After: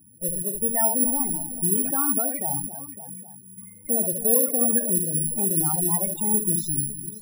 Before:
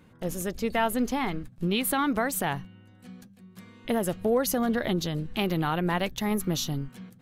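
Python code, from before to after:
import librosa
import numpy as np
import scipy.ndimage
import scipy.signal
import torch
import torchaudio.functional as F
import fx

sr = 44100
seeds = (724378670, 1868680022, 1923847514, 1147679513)

y = fx.echo_multitap(x, sr, ms=(59, 71, 267, 556, 813), db=(-15.0, -6.0, -11.5, -14.0, -18.5))
y = (np.kron(y[::4], np.eye(4)[0]) * 4)[:len(y)]
y = fx.spec_topn(y, sr, count=32)
y = F.gain(torch.from_numpy(y), -2.0).numpy()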